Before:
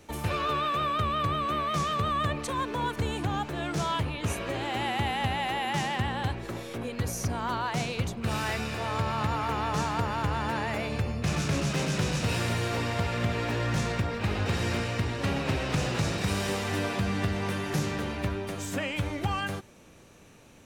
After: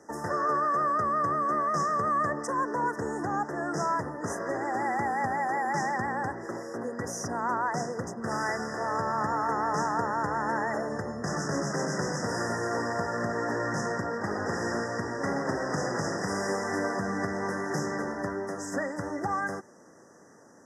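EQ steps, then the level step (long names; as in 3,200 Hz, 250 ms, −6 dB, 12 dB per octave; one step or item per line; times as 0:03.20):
band-pass filter 240–6,900 Hz
linear-phase brick-wall band-stop 2,000–4,900 Hz
+2.5 dB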